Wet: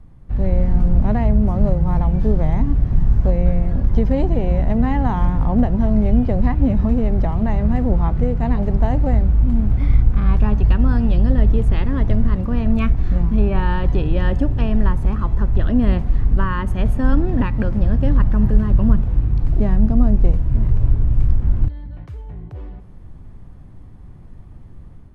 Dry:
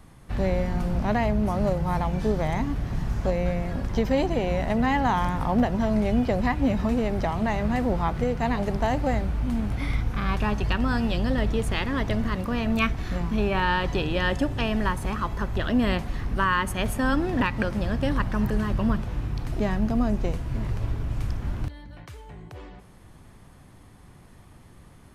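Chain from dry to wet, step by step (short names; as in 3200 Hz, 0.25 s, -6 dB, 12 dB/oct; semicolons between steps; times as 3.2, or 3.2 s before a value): AGC gain up to 5 dB; tilt -3.5 dB/oct; gain -7 dB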